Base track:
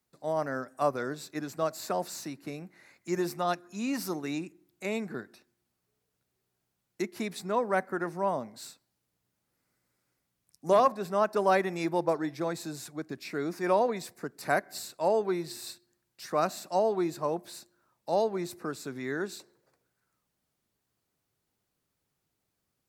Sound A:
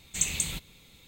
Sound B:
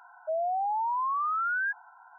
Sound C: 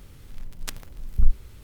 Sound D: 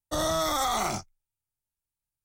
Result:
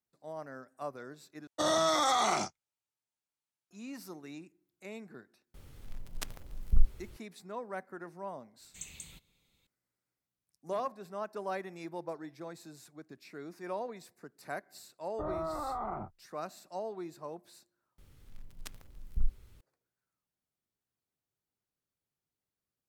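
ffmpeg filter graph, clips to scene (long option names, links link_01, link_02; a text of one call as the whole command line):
ffmpeg -i bed.wav -i cue0.wav -i cue1.wav -i cue2.wav -i cue3.wav -filter_complex "[4:a]asplit=2[link_01][link_02];[3:a]asplit=2[link_03][link_04];[0:a]volume=-12.5dB[link_05];[link_01]highpass=210,lowpass=7300[link_06];[link_03]equalizer=frequency=660:width_type=o:width=1.3:gain=3.5[link_07];[link_02]lowpass=frequency=1300:width=0.5412,lowpass=frequency=1300:width=1.3066[link_08];[link_05]asplit=3[link_09][link_10][link_11];[link_09]atrim=end=1.474[link_12];[link_06]atrim=end=2.24,asetpts=PTS-STARTPTS,volume=-0.5dB[link_13];[link_10]atrim=start=3.706:end=17.984[link_14];[link_04]atrim=end=1.63,asetpts=PTS-STARTPTS,volume=-12dB[link_15];[link_11]atrim=start=19.606[link_16];[link_07]atrim=end=1.63,asetpts=PTS-STARTPTS,volume=-6dB,afade=type=in:duration=0.004:curve=hsin,afade=type=out:start_time=1.626:duration=0.004:curve=hsin,adelay=5540[link_17];[1:a]atrim=end=1.07,asetpts=PTS-STARTPTS,volume=-18dB,afade=type=in:duration=0.004:curve=hsin,afade=type=out:start_time=1.066:duration=0.004:curve=hsin,adelay=8600[link_18];[link_08]atrim=end=2.24,asetpts=PTS-STARTPTS,volume=-8dB,afade=type=in:duration=0.004:curve=hsin,afade=type=out:start_time=2.236:duration=0.004:curve=hsin,adelay=15070[link_19];[link_12][link_13]acrossfade=duration=0.004:curve1=hsin:curve2=hsin[link_20];[link_20][link_14]acrossfade=duration=0.004:curve1=hsin:curve2=hsin[link_21];[link_21][link_15]acrossfade=duration=0.004:curve1=hsin:curve2=hsin[link_22];[link_22][link_16]acrossfade=duration=0.004:curve1=hsin:curve2=hsin[link_23];[link_23][link_17][link_18][link_19]amix=inputs=4:normalize=0" out.wav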